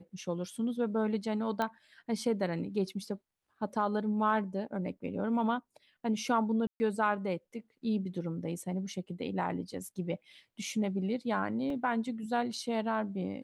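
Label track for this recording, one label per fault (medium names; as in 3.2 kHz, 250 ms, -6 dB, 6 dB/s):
1.620000	1.620000	pop -19 dBFS
6.670000	6.800000	dropout 130 ms
11.700000	11.700000	dropout 2.3 ms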